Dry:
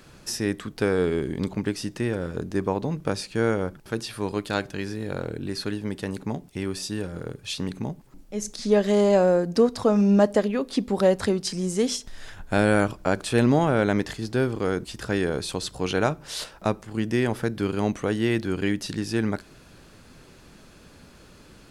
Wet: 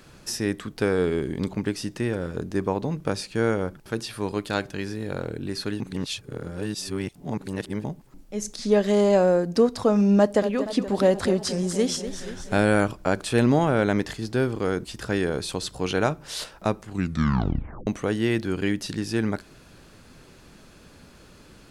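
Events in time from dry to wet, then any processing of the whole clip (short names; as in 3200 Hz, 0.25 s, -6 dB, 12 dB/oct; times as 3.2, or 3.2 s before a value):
5.8–7.84 reverse
10.18–12.59 warbling echo 0.238 s, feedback 63%, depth 116 cents, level -11.5 dB
16.86 tape stop 1.01 s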